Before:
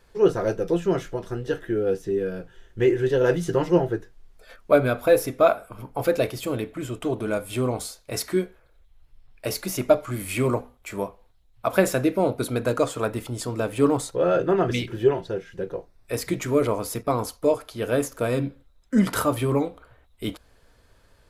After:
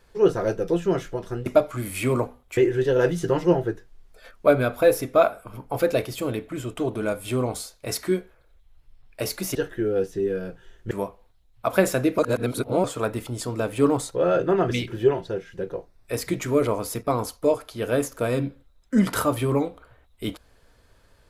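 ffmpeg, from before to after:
-filter_complex "[0:a]asplit=7[a][b][c][d][e][f][g];[a]atrim=end=1.462[h];[b]atrim=start=9.798:end=10.912[i];[c]atrim=start=2.818:end=9.802[j];[d]atrim=start=1.458:end=2.822[k];[e]atrim=start=10.908:end=12.182[l];[f]atrim=start=12.178:end=12.842,asetpts=PTS-STARTPTS,areverse[m];[g]atrim=start=12.838[n];[h][i]acrossfade=d=0.004:c1=hsin:c2=hsin[o];[o][j]acrossfade=d=0.004:c1=hsin:c2=hsin[p];[p][k]acrossfade=d=0.004:c1=hsin:c2=hsin[q];[q][l]acrossfade=d=0.004:c1=hsin:c2=hsin[r];[r][m]acrossfade=d=0.004:c1=hsin:c2=hsin[s];[s][n]acrossfade=d=0.004:c1=hsin:c2=hsin"

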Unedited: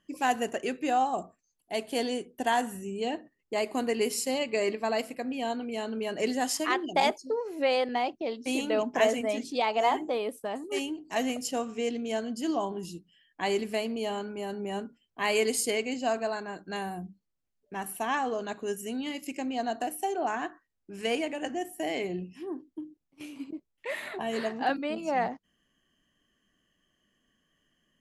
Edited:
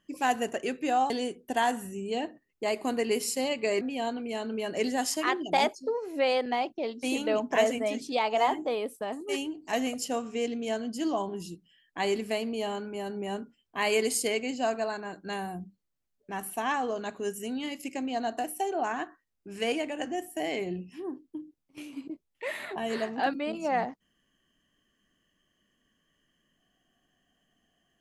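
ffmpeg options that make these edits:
-filter_complex "[0:a]asplit=3[a][b][c];[a]atrim=end=1.102[d];[b]atrim=start=1.998:end=4.712[e];[c]atrim=start=5.238[f];[d][e]acrossfade=d=0.004:c1=hsin:c2=hsin[g];[g][f]acrossfade=d=0.004:c1=hsin:c2=hsin"

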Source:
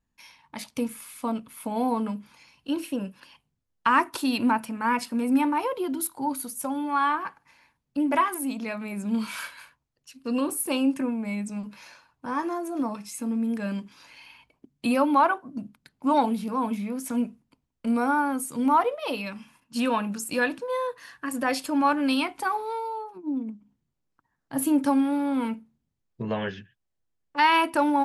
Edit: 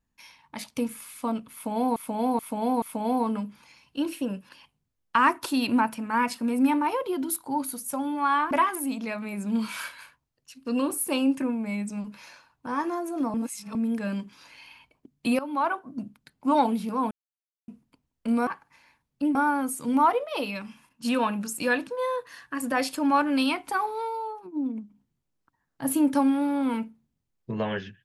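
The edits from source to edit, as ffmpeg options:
-filter_complex "[0:a]asplit=12[a][b][c][d][e][f][g][h][i][j][k][l];[a]atrim=end=1.962[m];[b]atrim=start=1.528:end=1.962[n];[c]atrim=start=1.528:end=1.962[o];[d]atrim=start=1.528:end=7.222[p];[e]atrim=start=8.098:end=12.932[q];[f]atrim=start=12.928:end=13.342,asetpts=PTS-STARTPTS,areverse[r];[g]atrim=start=13.338:end=14.98,asetpts=PTS-STARTPTS,afade=t=out:st=1.638:d=0.004:c=hsin:silence=0.141254[s];[h]atrim=start=14.98:end=16.7,asetpts=PTS-STARTPTS,afade=t=in:d=0.54:silence=0.141254,afade=t=out:st=1.716:d=0.004:c=hsin[t];[i]atrim=start=16.7:end=17.27,asetpts=PTS-STARTPTS,volume=0[u];[j]atrim=start=17.27:end=18.062,asetpts=PTS-STARTPTS,afade=t=in:d=0.004:c=hsin[v];[k]atrim=start=7.218:end=8.102[w];[l]atrim=start=18.058[x];[m][n]acrossfade=d=0.004:c1=hsin:c2=hsin[y];[y][o]acrossfade=d=0.004:c1=hsin:c2=hsin[z];[z][p]acrossfade=d=0.004:c1=hsin:c2=hsin[aa];[aa][q]acrossfade=d=0.004:c1=hsin:c2=hsin[ab];[ab][r]acrossfade=d=0.004:c1=hsin:c2=hsin[ac];[s][t][u][v]concat=n=4:v=0:a=1[ad];[ac][ad]acrossfade=d=0.004:c1=hsin:c2=hsin[ae];[ae][w]acrossfade=d=0.004:c1=hsin:c2=hsin[af];[af][x]acrossfade=d=0.004:c1=hsin:c2=hsin"

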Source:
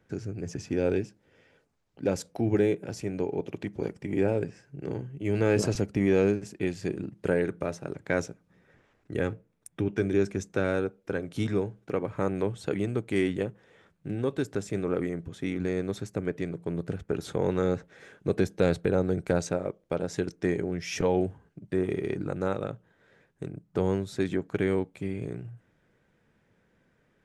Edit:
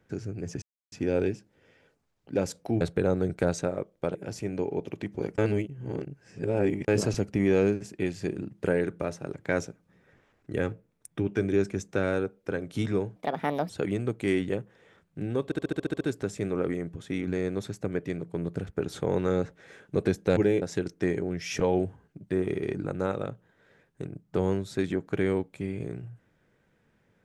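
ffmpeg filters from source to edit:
-filter_complex "[0:a]asplit=18[a][b][c][d][e][f][g][h][i][j][k][l][m][n][o][p][q][r];[a]atrim=end=0.62,asetpts=PTS-STARTPTS,afade=t=out:st=0.616:d=0.004:c=hsin,apad=pad_dur=0.3[s];[b]atrim=start=0.62:end=2.512,asetpts=PTS-STARTPTS,afade=t=in:d=0.004:c=hsin[t];[c]atrim=start=18.688:end=20.032[u];[d]atrim=start=2.758:end=3.992[v];[e]atrim=start=3.988:end=5.492,asetpts=PTS-STARTPTS,areverse[w];[f]atrim=start=5.488:end=11.774[x];[g]atrim=start=11.77:end=12.58,asetpts=PTS-STARTPTS,asetrate=66591,aresample=44100,atrim=end_sample=23656,asetpts=PTS-STARTPTS[y];[h]atrim=start=12.576:end=14.402[z];[i]atrim=start=14.328:end=14.402[aa];[j]atrim=start=14.328:end=14.402[ab];[k]atrim=start=14.328:end=14.402[ac];[l]atrim=start=14.328:end=14.402[ad];[m]atrim=start=14.328:end=14.402[ae];[n]atrim=start=14.328:end=14.402[af];[o]atrim=start=14.328:end=14.402[ag];[p]atrim=start=14.328:end=18.692[ah];[q]atrim=start=2.508:end=2.762[ai];[r]atrim=start=20.028[aj];[s][t]concat=n=2:v=0:a=1[ak];[ak][u]acrossfade=d=0.004:c1=hsin:c2=hsin[al];[al][v]acrossfade=d=0.004:c1=hsin:c2=hsin[am];[am][w]acrossfade=d=0.004:c1=hsin:c2=hsin[an];[an][x]acrossfade=d=0.004:c1=hsin:c2=hsin[ao];[ao][y]acrossfade=d=0.004:c1=hsin:c2=hsin[ap];[ap][z]acrossfade=d=0.004:c1=hsin:c2=hsin[aq];[aq][aa]acrossfade=d=0.004:c1=hsin:c2=hsin[ar];[ar][ab]acrossfade=d=0.004:c1=hsin:c2=hsin[as];[as][ac]acrossfade=d=0.004:c1=hsin:c2=hsin[at];[at][ad]acrossfade=d=0.004:c1=hsin:c2=hsin[au];[au][ae]acrossfade=d=0.004:c1=hsin:c2=hsin[av];[av][af]acrossfade=d=0.004:c1=hsin:c2=hsin[aw];[aw][ag]acrossfade=d=0.004:c1=hsin:c2=hsin[ax];[ax][ah]acrossfade=d=0.004:c1=hsin:c2=hsin[ay];[ay][ai]acrossfade=d=0.004:c1=hsin:c2=hsin[az];[az][aj]acrossfade=d=0.004:c1=hsin:c2=hsin"

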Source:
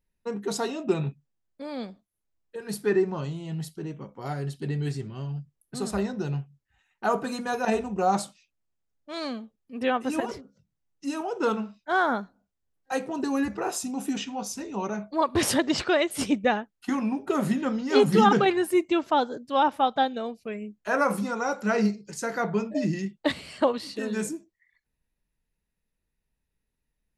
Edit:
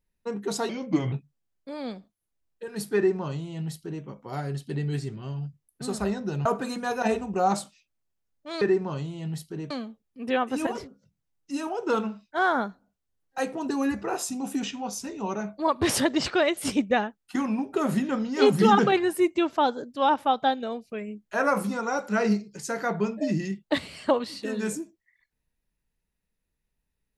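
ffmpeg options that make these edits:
-filter_complex "[0:a]asplit=6[a][b][c][d][e][f];[a]atrim=end=0.694[g];[b]atrim=start=0.69:end=1.05,asetpts=PTS-STARTPTS,asetrate=36603,aresample=44100[h];[c]atrim=start=1.046:end=6.382[i];[d]atrim=start=7.078:end=9.242[j];[e]atrim=start=2.878:end=3.972[k];[f]atrim=start=9.238[l];[g][h]acrossfade=d=0.004:c1=hsin:c2=hsin[m];[m][i]acrossfade=d=0.004:c1=hsin:c2=hsin[n];[n][j]acrossfade=d=0.004:c1=hsin:c2=hsin[o];[o][k]acrossfade=d=0.004:c1=hsin:c2=hsin[p];[p][l]acrossfade=d=0.004:c1=hsin:c2=hsin"

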